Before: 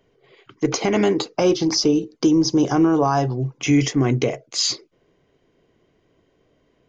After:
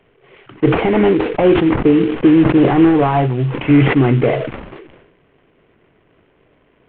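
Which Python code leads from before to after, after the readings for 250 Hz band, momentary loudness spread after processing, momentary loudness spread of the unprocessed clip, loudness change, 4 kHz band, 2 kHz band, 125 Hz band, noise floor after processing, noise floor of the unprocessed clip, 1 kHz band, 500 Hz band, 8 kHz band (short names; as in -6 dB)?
+6.5 dB, 7 LU, 7 LU, +6.0 dB, -6.5 dB, +8.0 dB, +7.5 dB, -56 dBFS, -64 dBFS, +5.5 dB, +6.5 dB, n/a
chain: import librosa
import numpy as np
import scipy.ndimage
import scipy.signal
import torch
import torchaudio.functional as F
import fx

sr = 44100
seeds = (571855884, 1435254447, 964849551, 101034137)

y = fx.cvsd(x, sr, bps=16000)
y = fx.sustainer(y, sr, db_per_s=54.0)
y = F.gain(torch.from_numpy(y), 6.5).numpy()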